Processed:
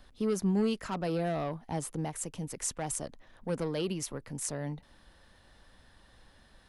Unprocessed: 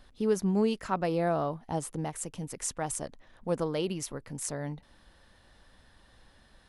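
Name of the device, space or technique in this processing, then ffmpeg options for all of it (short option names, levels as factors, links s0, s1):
one-band saturation: -filter_complex "[0:a]acrossover=split=290|2400[s0][s1][s2];[s1]asoftclip=type=tanh:threshold=0.0299[s3];[s0][s3][s2]amix=inputs=3:normalize=0"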